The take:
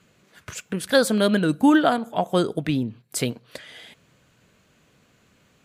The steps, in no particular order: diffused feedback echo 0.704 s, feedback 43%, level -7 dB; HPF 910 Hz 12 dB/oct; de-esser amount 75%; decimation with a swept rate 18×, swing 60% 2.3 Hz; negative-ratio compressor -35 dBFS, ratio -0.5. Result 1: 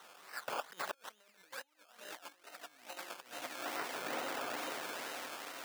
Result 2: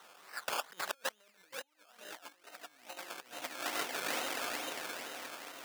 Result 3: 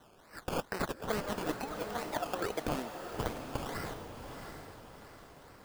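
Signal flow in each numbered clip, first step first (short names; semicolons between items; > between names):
diffused feedback echo > negative-ratio compressor > decimation with a swept rate > HPF > de-esser; de-esser > diffused feedback echo > negative-ratio compressor > decimation with a swept rate > HPF; HPF > decimation with a swept rate > de-esser > negative-ratio compressor > diffused feedback echo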